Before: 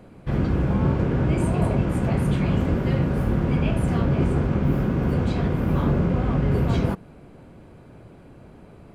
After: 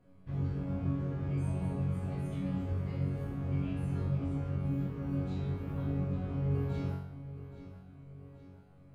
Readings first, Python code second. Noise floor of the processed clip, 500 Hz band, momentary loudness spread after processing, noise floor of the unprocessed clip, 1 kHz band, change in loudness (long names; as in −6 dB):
−56 dBFS, −16.0 dB, 16 LU, −47 dBFS, −17.5 dB, −12.5 dB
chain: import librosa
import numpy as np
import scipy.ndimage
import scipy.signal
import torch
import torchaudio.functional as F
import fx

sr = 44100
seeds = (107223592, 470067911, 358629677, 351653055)

y = fx.low_shelf(x, sr, hz=200.0, db=8.0)
y = fx.resonator_bank(y, sr, root=42, chord='fifth', decay_s=0.68)
y = fx.echo_feedback(y, sr, ms=823, feedback_pct=51, wet_db=-14.5)
y = F.gain(torch.from_numpy(y), -2.5).numpy()